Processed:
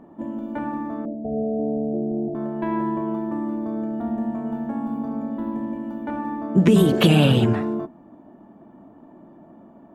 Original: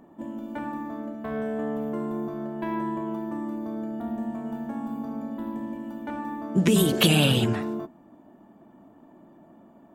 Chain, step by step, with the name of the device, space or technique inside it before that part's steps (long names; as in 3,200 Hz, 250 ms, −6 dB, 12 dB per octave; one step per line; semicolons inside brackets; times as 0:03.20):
0:01.05–0:02.35: Butterworth low-pass 780 Hz 96 dB per octave
through cloth (high-shelf EQ 3,000 Hz −14 dB)
level +5.5 dB